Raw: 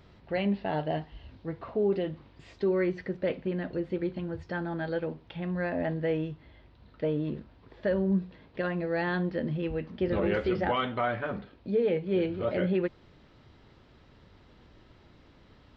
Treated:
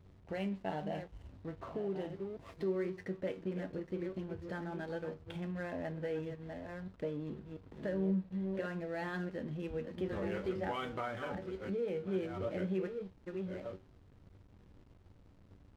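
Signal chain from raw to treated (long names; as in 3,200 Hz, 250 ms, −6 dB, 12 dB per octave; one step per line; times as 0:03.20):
delay that plays each chunk backwards 688 ms, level −9.5 dB
downward compressor 2 to 1, threshold −39 dBFS, peak gain reduction 9.5 dB
tuned comb filter 95 Hz, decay 0.3 s, harmonics all, mix 70%
slack as between gear wheels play −55 dBFS
level +4.5 dB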